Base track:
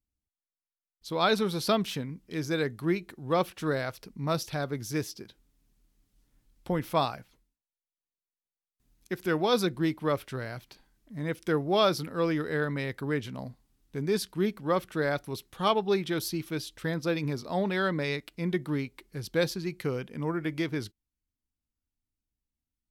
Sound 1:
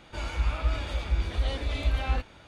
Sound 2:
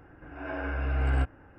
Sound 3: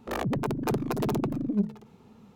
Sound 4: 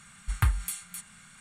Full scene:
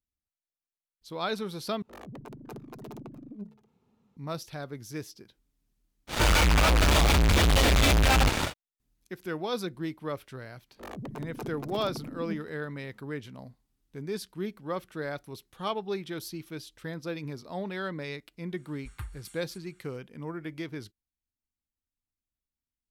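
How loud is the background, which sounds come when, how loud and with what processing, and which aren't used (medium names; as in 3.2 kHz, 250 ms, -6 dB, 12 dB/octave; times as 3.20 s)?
base track -6.5 dB
1.82 s: replace with 3 -15.5 dB
6.07 s: add 1 -6.5 dB, fades 0.10 s + fuzz box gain 54 dB, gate -52 dBFS
10.72 s: add 3 -11 dB, fades 0.10 s
18.57 s: add 4 -15.5 dB
not used: 2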